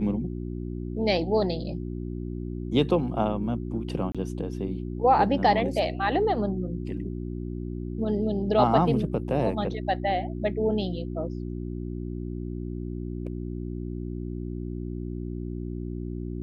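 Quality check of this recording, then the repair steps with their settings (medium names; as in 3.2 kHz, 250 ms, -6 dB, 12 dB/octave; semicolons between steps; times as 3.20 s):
hum 60 Hz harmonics 6 -33 dBFS
4.12–4.15 s: dropout 26 ms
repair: de-hum 60 Hz, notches 6; interpolate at 4.12 s, 26 ms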